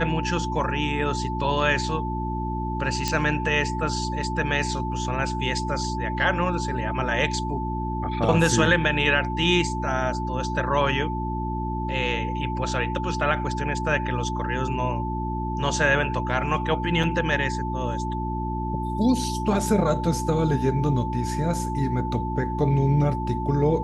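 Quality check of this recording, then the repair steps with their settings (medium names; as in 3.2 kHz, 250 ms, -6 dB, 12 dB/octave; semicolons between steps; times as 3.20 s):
hum 60 Hz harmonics 6 -29 dBFS
whine 880 Hz -30 dBFS
3.08 s: pop -10 dBFS
17.03 s: dropout 4.6 ms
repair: de-click; band-stop 880 Hz, Q 30; de-hum 60 Hz, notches 6; interpolate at 17.03 s, 4.6 ms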